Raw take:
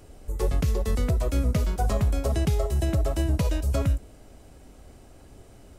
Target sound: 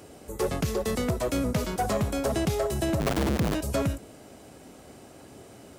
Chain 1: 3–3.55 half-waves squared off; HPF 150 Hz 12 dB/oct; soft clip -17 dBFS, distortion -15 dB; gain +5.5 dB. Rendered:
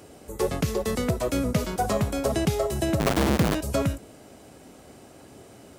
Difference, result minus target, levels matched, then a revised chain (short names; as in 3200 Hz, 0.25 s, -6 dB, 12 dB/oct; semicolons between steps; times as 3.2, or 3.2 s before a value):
soft clip: distortion -6 dB
3–3.55 half-waves squared off; HPF 150 Hz 12 dB/oct; soft clip -25 dBFS, distortion -9 dB; gain +5.5 dB